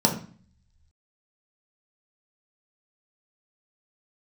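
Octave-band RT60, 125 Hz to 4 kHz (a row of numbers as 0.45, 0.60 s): 1.1, 0.70, 0.40, 0.45, 0.45, 0.40 s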